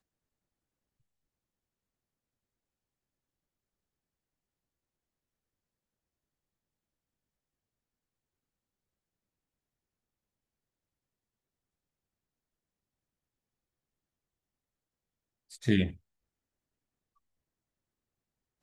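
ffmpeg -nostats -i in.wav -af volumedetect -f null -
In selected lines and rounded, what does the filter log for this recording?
mean_volume: -44.5 dB
max_volume: -12.1 dB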